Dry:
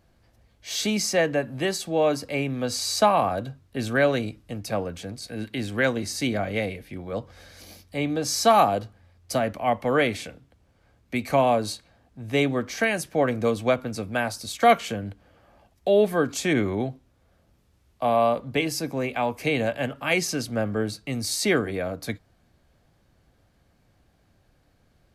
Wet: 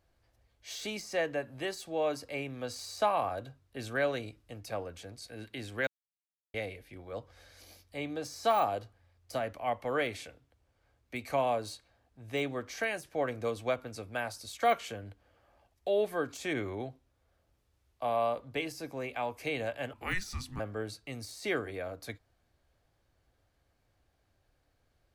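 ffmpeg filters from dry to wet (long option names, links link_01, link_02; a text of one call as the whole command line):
ffmpeg -i in.wav -filter_complex "[0:a]asettb=1/sr,asplit=3[link_01][link_02][link_03];[link_01]atrim=end=19.934[link_04];[link_02]atrim=start=19.93:end=20.6,asetpts=PTS-STARTPTS,afade=type=in:duration=0.004:curve=qsin,afade=type=out:start_time=0.666:duration=0.004:curve=qsin,afreqshift=-370[link_05];[link_03]atrim=start=20.596[link_06];[link_04][link_05]acrossfade=duration=0.004:curve1=hsin:curve2=qsin[link_07];[link_07][link_06]acrossfade=duration=0.004:curve1=qsin:curve2=hsin,asplit=3[link_08][link_09][link_10];[link_08]atrim=end=5.87,asetpts=PTS-STARTPTS,afade=type=out:start_time=5.866:duration=0.004:curve=hsin[link_11];[link_09]atrim=start=5.87:end=6.54,asetpts=PTS-STARTPTS,volume=0[link_12];[link_10]atrim=start=6.54,asetpts=PTS-STARTPTS,afade=type=in:duration=0.004:curve=hsin[link_13];[link_11][link_12][link_13]concat=n=3:v=0:a=1,deesser=0.65,equalizer=frequency=190:width=1.5:gain=-10,volume=-8.5dB" out.wav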